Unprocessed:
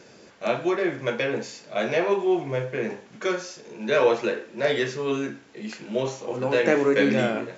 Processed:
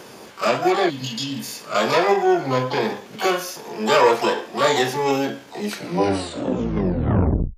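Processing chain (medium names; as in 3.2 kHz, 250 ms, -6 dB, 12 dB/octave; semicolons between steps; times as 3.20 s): tape stop on the ending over 1.98 s; in parallel at -1 dB: compression, threshold -30 dBFS, peak gain reduction 14.5 dB; on the sum: harmony voices +12 st -3 dB; spectral replace 0.92–1.53 s, 310–2600 Hz after; transformer saturation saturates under 310 Hz; trim +1.5 dB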